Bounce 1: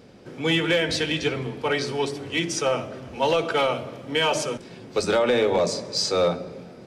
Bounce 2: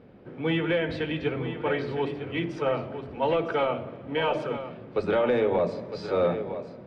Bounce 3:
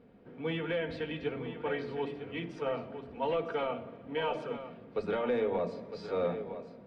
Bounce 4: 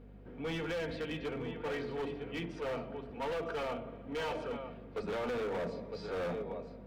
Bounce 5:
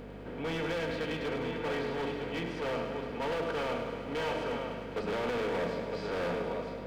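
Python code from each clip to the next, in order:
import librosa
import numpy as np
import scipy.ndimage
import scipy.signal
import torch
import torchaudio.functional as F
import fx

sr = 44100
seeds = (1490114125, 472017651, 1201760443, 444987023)

y1 = fx.air_absorb(x, sr, metres=490.0)
y1 = y1 + 10.0 ** (-10.5 / 20.0) * np.pad(y1, (int(958 * sr / 1000.0), 0))[:len(y1)]
y1 = F.gain(torch.from_numpy(y1), -1.5).numpy()
y2 = y1 + 0.37 * np.pad(y1, (int(4.3 * sr / 1000.0), 0))[:len(y1)]
y2 = F.gain(torch.from_numpy(y2), -8.0).numpy()
y3 = np.clip(y2, -10.0 ** (-33.5 / 20.0), 10.0 ** (-33.5 / 20.0))
y3 = fx.add_hum(y3, sr, base_hz=50, snr_db=16)
y4 = fx.bin_compress(y3, sr, power=0.6)
y4 = fx.echo_thinned(y4, sr, ms=103, feedback_pct=75, hz=420.0, wet_db=-9.0)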